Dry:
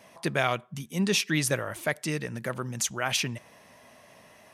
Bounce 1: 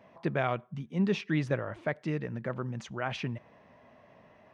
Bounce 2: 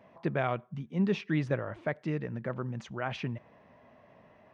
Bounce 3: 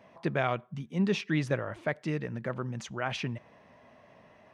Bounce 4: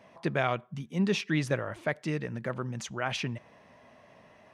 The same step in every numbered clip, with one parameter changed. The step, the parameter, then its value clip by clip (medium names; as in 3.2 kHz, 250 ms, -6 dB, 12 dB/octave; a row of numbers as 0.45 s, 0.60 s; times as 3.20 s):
tape spacing loss, at 10 kHz: 38 dB, 46 dB, 29 dB, 21 dB